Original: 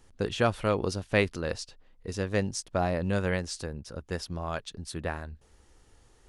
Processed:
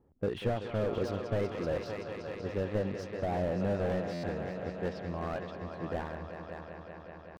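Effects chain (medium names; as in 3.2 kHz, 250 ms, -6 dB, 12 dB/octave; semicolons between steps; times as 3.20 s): tempo 0.85×; dynamic bell 520 Hz, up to +4 dB, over -33 dBFS, Q 1; compression 6:1, threshold -24 dBFS, peak gain reduction 8 dB; level-controlled noise filter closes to 560 Hz, open at -23.5 dBFS; high-pass 140 Hz 6 dB/octave; distance through air 80 m; band-stop 1.5 kHz, Q 22; multi-head delay 190 ms, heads all three, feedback 72%, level -15 dB; buffer glitch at 4.13 s, samples 512, times 8; slew-rate limiter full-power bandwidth 22 Hz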